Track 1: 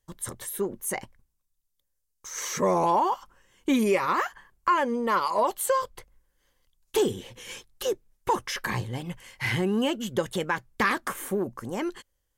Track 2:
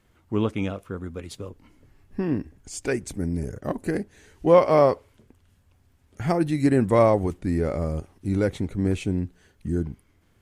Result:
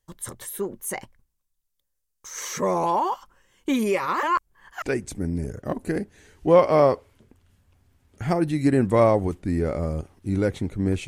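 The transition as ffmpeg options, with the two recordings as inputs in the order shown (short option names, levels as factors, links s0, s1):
-filter_complex "[0:a]apad=whole_dur=11.07,atrim=end=11.07,asplit=2[s0][s1];[s0]atrim=end=4.232[s2];[s1]atrim=start=4.228:end=4.822,asetpts=PTS-STARTPTS,areverse[s3];[1:a]atrim=start=2.808:end=9.06[s4];[s2][s3]acrossfade=d=0.004:c1=hsin:c2=hsin[s5];[s5][s4]acrossfade=d=0.004:c1=hsin:c2=hsin"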